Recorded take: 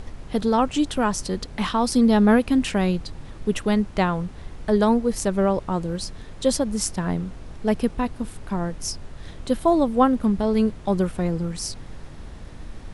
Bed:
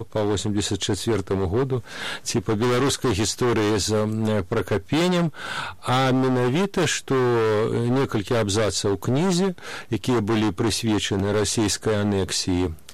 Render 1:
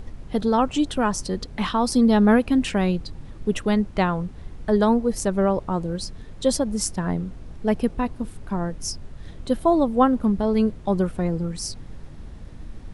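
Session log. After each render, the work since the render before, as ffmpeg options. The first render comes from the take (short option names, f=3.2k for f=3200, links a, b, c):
-af "afftdn=nr=6:nf=-40"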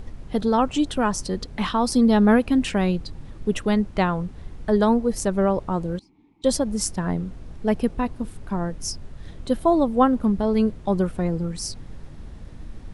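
-filter_complex "[0:a]asettb=1/sr,asplit=3[a][b][c];[a]atrim=end=5.994[d];[b]atrim=start=5.99:end=6.44,asetpts=PTS-STARTPTS,afade=t=in:d=0.004:c=qsin,afade=t=out:st=0.446:d=0.004:c=qsin,asplit=3[e][f][g];[e]bandpass=f=300:t=q:w=8,volume=0dB[h];[f]bandpass=f=870:t=q:w=8,volume=-6dB[i];[g]bandpass=f=2.24k:t=q:w=8,volume=-9dB[j];[h][i][j]amix=inputs=3:normalize=0[k];[c]atrim=start=6.436[l];[d][k]acrossfade=d=0.004:c1=hsin:c2=qsin[m];[m][l]acrossfade=d=0.004:c1=qsin:c2=hsin"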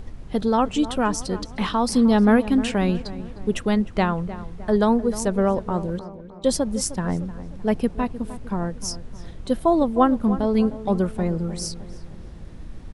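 -filter_complex "[0:a]asplit=2[a][b];[b]adelay=307,lowpass=f=1.9k:p=1,volume=-14dB,asplit=2[c][d];[d]adelay=307,lowpass=f=1.9k:p=1,volume=0.5,asplit=2[e][f];[f]adelay=307,lowpass=f=1.9k:p=1,volume=0.5,asplit=2[g][h];[h]adelay=307,lowpass=f=1.9k:p=1,volume=0.5,asplit=2[i][j];[j]adelay=307,lowpass=f=1.9k:p=1,volume=0.5[k];[a][c][e][g][i][k]amix=inputs=6:normalize=0"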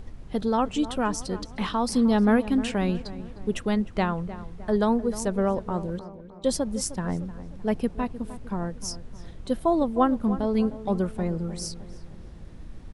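-af "volume=-4dB"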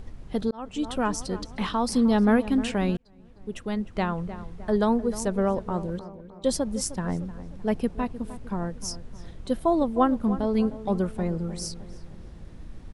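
-filter_complex "[0:a]asplit=3[a][b][c];[a]atrim=end=0.51,asetpts=PTS-STARTPTS,afade=t=out:st=0.506:d=0.004:c=hsin[d];[b]atrim=start=0.51:end=2.97,asetpts=PTS-STARTPTS,afade=t=in:d=0.44,afade=t=out:st=2.456:d=0.004:c=hsin[e];[c]atrim=start=2.97,asetpts=PTS-STARTPTS,afade=t=in:d=1.29[f];[d][e][f]concat=n=3:v=0:a=1"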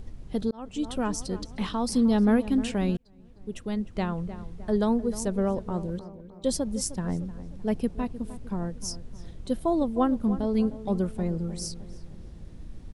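-af "equalizer=f=1.3k:w=0.51:g=-6"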